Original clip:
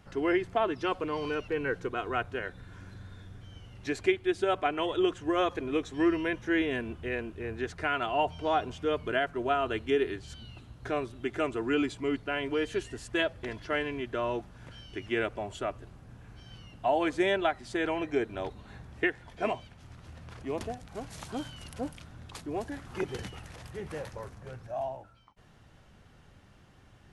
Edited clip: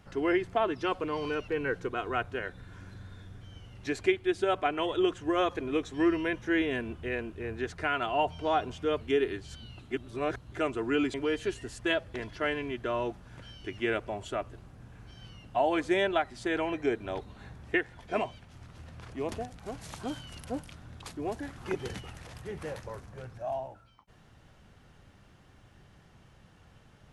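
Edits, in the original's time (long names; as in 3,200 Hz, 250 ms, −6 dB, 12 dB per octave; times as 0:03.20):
0:09.01–0:09.80: remove
0:10.69–0:11.31: reverse
0:11.93–0:12.43: remove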